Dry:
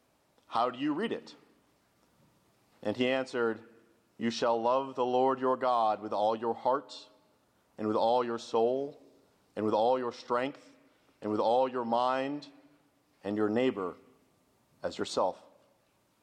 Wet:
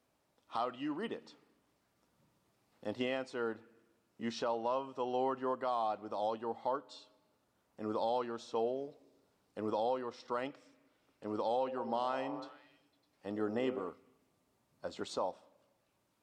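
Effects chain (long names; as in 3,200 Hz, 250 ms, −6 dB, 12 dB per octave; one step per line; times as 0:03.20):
0:11.57–0:13.89: echo through a band-pass that steps 101 ms, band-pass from 400 Hz, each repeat 0.7 octaves, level −6.5 dB
level −7 dB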